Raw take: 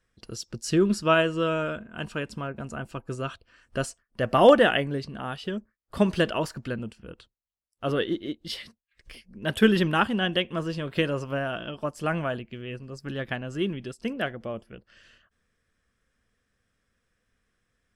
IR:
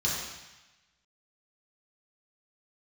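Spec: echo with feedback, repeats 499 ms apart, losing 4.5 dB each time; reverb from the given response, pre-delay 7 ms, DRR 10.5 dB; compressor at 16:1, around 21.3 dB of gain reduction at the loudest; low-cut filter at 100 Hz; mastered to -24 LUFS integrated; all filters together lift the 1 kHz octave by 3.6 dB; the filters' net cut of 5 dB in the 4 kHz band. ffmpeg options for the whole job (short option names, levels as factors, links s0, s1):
-filter_complex "[0:a]highpass=100,equalizer=f=1000:t=o:g=5.5,equalizer=f=4000:t=o:g=-8.5,acompressor=threshold=0.0316:ratio=16,aecho=1:1:499|998|1497|1996|2495|2994|3493|3992|4491:0.596|0.357|0.214|0.129|0.0772|0.0463|0.0278|0.0167|0.01,asplit=2[s0][s1];[1:a]atrim=start_sample=2205,adelay=7[s2];[s1][s2]afir=irnorm=-1:irlink=0,volume=0.106[s3];[s0][s3]amix=inputs=2:normalize=0,volume=3.55"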